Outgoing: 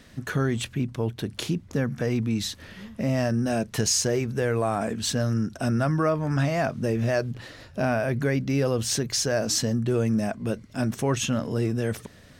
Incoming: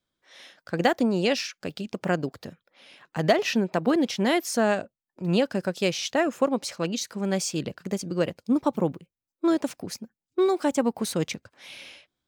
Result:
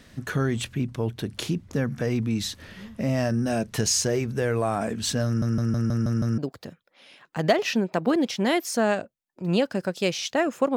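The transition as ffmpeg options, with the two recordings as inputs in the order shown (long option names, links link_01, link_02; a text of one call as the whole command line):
ffmpeg -i cue0.wav -i cue1.wav -filter_complex "[0:a]apad=whole_dur=10.76,atrim=end=10.76,asplit=7[link_01][link_02][link_03][link_04][link_05][link_06][link_07];[link_01]atrim=end=5.422[link_08];[link_02]atrim=start=5.258:end=5.422[link_09];[link_03]atrim=start=5.258:end=5.422[link_10];[link_04]atrim=start=5.258:end=5.422[link_11];[link_05]atrim=start=5.258:end=5.422[link_12];[link_06]atrim=start=5.258:end=5.422[link_13];[link_07]atrim=start=5.258:end=5.422[link_14];[1:a]atrim=start=2.178:end=6.56[link_15];[link_08][link_09]acrossfade=duration=0.004:curve1=hsin:curve2=hsin[link_16];[link_16][link_10]acrossfade=duration=0.004:curve1=hsin:curve2=hsin[link_17];[link_17][link_11]acrossfade=duration=0.004:curve1=hsin:curve2=hsin[link_18];[link_18][link_12]acrossfade=duration=0.004:curve1=hsin:curve2=hsin[link_19];[link_19][link_13]acrossfade=duration=0.004:curve1=hsin:curve2=hsin[link_20];[link_20][link_14]acrossfade=duration=0.004:curve1=hsin:curve2=hsin[link_21];[link_21][link_15]acrossfade=duration=0.004:curve1=hsin:curve2=hsin" out.wav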